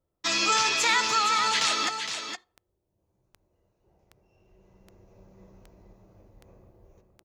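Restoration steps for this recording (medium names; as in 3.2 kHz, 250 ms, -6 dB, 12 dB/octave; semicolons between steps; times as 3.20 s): clip repair -13.5 dBFS; de-click; inverse comb 464 ms -7.5 dB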